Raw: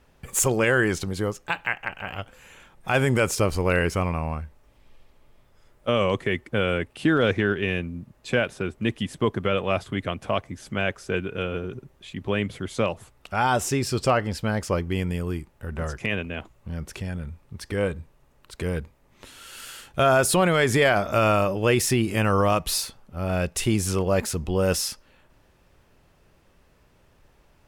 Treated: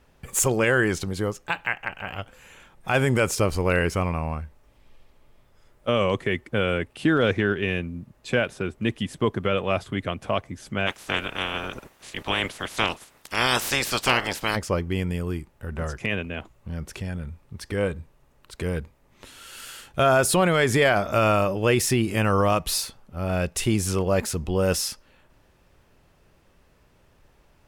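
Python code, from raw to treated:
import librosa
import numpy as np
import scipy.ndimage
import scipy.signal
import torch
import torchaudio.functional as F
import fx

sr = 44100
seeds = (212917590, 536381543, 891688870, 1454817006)

y = fx.spec_clip(x, sr, under_db=27, at=(10.86, 14.55), fade=0.02)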